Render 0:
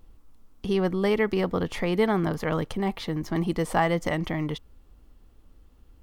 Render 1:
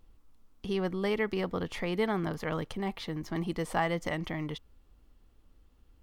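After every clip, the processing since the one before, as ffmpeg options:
-af "equalizer=f=3000:w=0.49:g=3,volume=0.447"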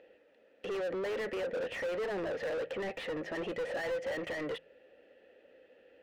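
-filter_complex "[0:a]asplit=3[s0][s1][s2];[s0]bandpass=f=530:t=q:w=8,volume=1[s3];[s1]bandpass=f=1840:t=q:w=8,volume=0.501[s4];[s2]bandpass=f=2480:t=q:w=8,volume=0.355[s5];[s3][s4][s5]amix=inputs=3:normalize=0,asplit=2[s6][s7];[s7]highpass=f=720:p=1,volume=70.8,asoftclip=type=tanh:threshold=0.0422[s8];[s6][s8]amix=inputs=2:normalize=0,lowpass=f=1300:p=1,volume=0.501,bandreject=f=53.66:t=h:w=4,bandreject=f=107.32:t=h:w=4,bandreject=f=160.98:t=h:w=4"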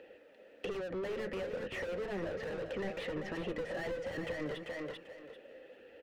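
-filter_complex "[0:a]aecho=1:1:392|784|1176:0.398|0.0756|0.0144,acrossover=split=210[s0][s1];[s1]acompressor=threshold=0.00708:ratio=6[s2];[s0][s2]amix=inputs=2:normalize=0,flanger=delay=0.7:depth=4.7:regen=-62:speed=1.2:shape=sinusoidal,volume=2.99"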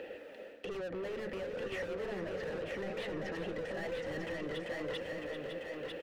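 -af "alimiter=level_in=2.37:limit=0.0631:level=0:latency=1,volume=0.422,areverse,acompressor=threshold=0.00398:ratio=6,areverse,aecho=1:1:948:0.596,volume=3.16"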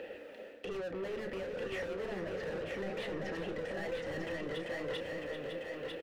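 -filter_complex "[0:a]asplit=2[s0][s1];[s1]adelay=31,volume=0.299[s2];[s0][s2]amix=inputs=2:normalize=0"

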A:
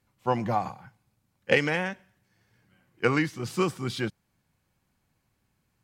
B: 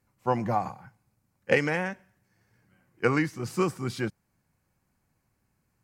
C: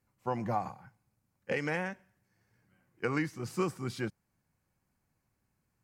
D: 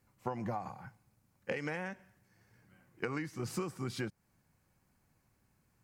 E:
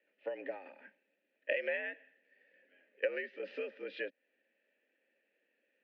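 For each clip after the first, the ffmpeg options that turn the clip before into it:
-af "equalizer=f=3400:w=2.1:g=-9"
-af "alimiter=limit=0.2:level=0:latency=1:release=121,volume=0.562"
-af "acompressor=threshold=0.0112:ratio=12,volume=1.88"
-filter_complex "[0:a]highpass=f=150:t=q:w=0.5412,highpass=f=150:t=q:w=1.307,lowpass=f=3500:t=q:w=0.5176,lowpass=f=3500:t=q:w=0.7071,lowpass=f=3500:t=q:w=1.932,afreqshift=76,asplit=3[s0][s1][s2];[s0]bandpass=f=530:t=q:w=8,volume=1[s3];[s1]bandpass=f=1840:t=q:w=8,volume=0.501[s4];[s2]bandpass=f=2480:t=q:w=8,volume=0.355[s5];[s3][s4][s5]amix=inputs=3:normalize=0,crystalizer=i=6.5:c=0,volume=2.24"

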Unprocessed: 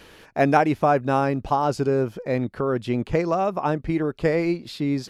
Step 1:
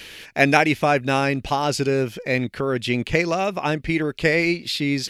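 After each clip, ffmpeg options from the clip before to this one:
-af "highshelf=f=1600:t=q:w=1.5:g=10,volume=1.12"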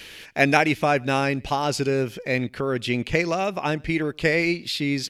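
-filter_complex "[0:a]asplit=2[s0][s1];[s1]adelay=110.8,volume=0.0355,highshelf=f=4000:g=-2.49[s2];[s0][s2]amix=inputs=2:normalize=0,volume=0.794"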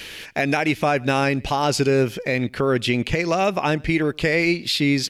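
-af "alimiter=limit=0.178:level=0:latency=1:release=152,volume=1.88"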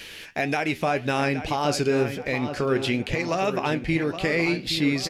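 -filter_complex "[0:a]flanger=delay=8.5:depth=4.4:regen=69:speed=1.9:shape=triangular,asplit=2[s0][s1];[s1]adelay=820,lowpass=f=4000:p=1,volume=0.316,asplit=2[s2][s3];[s3]adelay=820,lowpass=f=4000:p=1,volume=0.49,asplit=2[s4][s5];[s5]adelay=820,lowpass=f=4000:p=1,volume=0.49,asplit=2[s6][s7];[s7]adelay=820,lowpass=f=4000:p=1,volume=0.49,asplit=2[s8][s9];[s9]adelay=820,lowpass=f=4000:p=1,volume=0.49[s10];[s0][s2][s4][s6][s8][s10]amix=inputs=6:normalize=0"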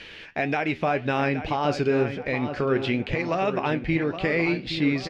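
-af "lowpass=3200"

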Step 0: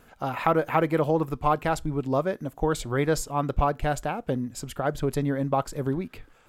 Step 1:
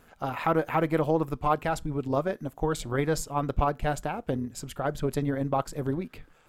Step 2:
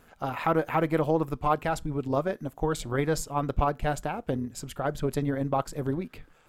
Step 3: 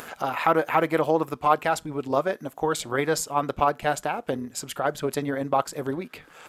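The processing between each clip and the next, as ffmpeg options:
-af "tremolo=f=160:d=0.462"
-af anull
-af "aresample=32000,aresample=44100,acompressor=mode=upward:threshold=0.0251:ratio=2.5,highpass=f=510:p=1,volume=2.11"

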